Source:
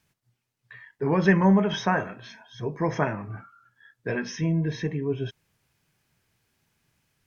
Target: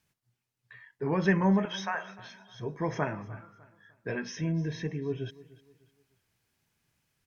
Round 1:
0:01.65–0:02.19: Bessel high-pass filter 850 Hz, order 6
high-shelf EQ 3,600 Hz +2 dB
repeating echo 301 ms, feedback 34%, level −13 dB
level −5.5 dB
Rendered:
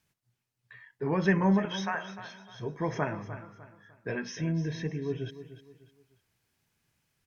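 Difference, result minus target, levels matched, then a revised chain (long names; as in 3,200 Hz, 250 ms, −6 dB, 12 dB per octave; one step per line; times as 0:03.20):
echo-to-direct +6.5 dB
0:01.65–0:02.19: Bessel high-pass filter 850 Hz, order 6
high-shelf EQ 3,600 Hz +2 dB
repeating echo 301 ms, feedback 34%, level −19.5 dB
level −5.5 dB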